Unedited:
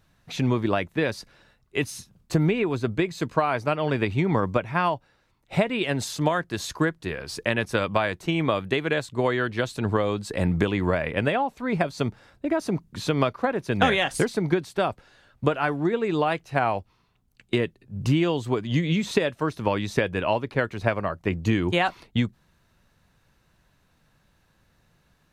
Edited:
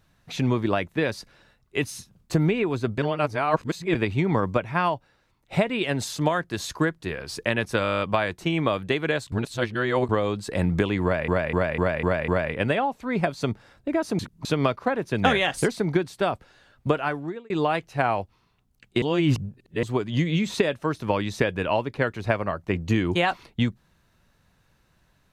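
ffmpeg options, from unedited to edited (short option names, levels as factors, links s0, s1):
-filter_complex "[0:a]asplit=24[s0][s1][s2][s3][s4][s5][s6][s7][s8][s9][s10][s11][s12][s13][s14][s15][s16][s17][s18][s19][s20][s21][s22][s23];[s0]atrim=end=2.982[s24];[s1]atrim=start=2.978:end=3.952,asetpts=PTS-STARTPTS,areverse[s25];[s2]atrim=start=3.948:end=7.852[s26];[s3]atrim=start=7.828:end=7.852[s27];[s4]atrim=start=7.828:end=7.852[s28];[s5]atrim=start=7.828:end=7.852[s29];[s6]atrim=start=7.828:end=7.852[s30];[s7]atrim=start=7.828:end=7.852[s31];[s8]atrim=start=7.828:end=7.852[s32];[s9]atrim=start=7.828:end=7.852[s33];[s10]atrim=start=7.828:end=7.852[s34];[s11]atrim=start=7.828:end=9.142[s35];[s12]atrim=start=9.138:end=9.912,asetpts=PTS-STARTPTS,areverse[s36];[s13]atrim=start=9.908:end=11.102[s37];[s14]atrim=start=10.848:end=11.102[s38];[s15]atrim=start=10.848:end=11.102[s39];[s16]atrim=start=10.848:end=11.102[s40];[s17]atrim=start=10.848:end=11.102[s41];[s18]atrim=start=10.848:end=12.762[s42];[s19]atrim=start=12.758:end=13.022,asetpts=PTS-STARTPTS,areverse[s43];[s20]atrim=start=13.018:end=16.07,asetpts=PTS-STARTPTS,afade=t=out:st=2.522:d=0.53[s44];[s21]atrim=start=16.07:end=17.592,asetpts=PTS-STARTPTS,afade=t=in:d=0.004:c=hsin[s45];[s22]atrim=start=17.588:end=18.402,asetpts=PTS-STARTPTS,areverse[s46];[s23]atrim=start=18.398[s47];[s24][s25]acrossfade=d=0.004:c1=hsin:c2=hsin[s48];[s48][s26]acrossfade=d=0.004:c1=hsin:c2=hsin[s49];[s49][s27]acrossfade=d=0.004:c1=hsin:c2=hsin[s50];[s50][s28]acrossfade=d=0.004:c1=hsin:c2=hsin[s51];[s51][s29]acrossfade=d=0.004:c1=hsin:c2=hsin[s52];[s52][s30]acrossfade=d=0.004:c1=hsin:c2=hsin[s53];[s53][s31]acrossfade=d=0.004:c1=hsin:c2=hsin[s54];[s54][s32]acrossfade=d=0.004:c1=hsin:c2=hsin[s55];[s55][s33]acrossfade=d=0.004:c1=hsin:c2=hsin[s56];[s56][s34]acrossfade=d=0.004:c1=hsin:c2=hsin[s57];[s57][s35]acrossfade=d=0.004:c1=hsin:c2=hsin[s58];[s58][s36]acrossfade=d=0.004:c1=hsin:c2=hsin[s59];[s59][s37]acrossfade=d=0.004:c1=hsin:c2=hsin[s60];[s60][s38]acrossfade=d=0.004:c1=hsin:c2=hsin[s61];[s61][s39]acrossfade=d=0.004:c1=hsin:c2=hsin[s62];[s62][s40]acrossfade=d=0.004:c1=hsin:c2=hsin[s63];[s63][s41]acrossfade=d=0.004:c1=hsin:c2=hsin[s64];[s64][s42]acrossfade=d=0.004:c1=hsin:c2=hsin[s65];[s65][s43]acrossfade=d=0.004:c1=hsin:c2=hsin[s66];[s44][s45]concat=n=2:v=0:a=1[s67];[s66][s67]acrossfade=d=0.004:c1=hsin:c2=hsin[s68];[s68][s46]acrossfade=d=0.004:c1=hsin:c2=hsin[s69];[s69][s47]acrossfade=d=0.004:c1=hsin:c2=hsin"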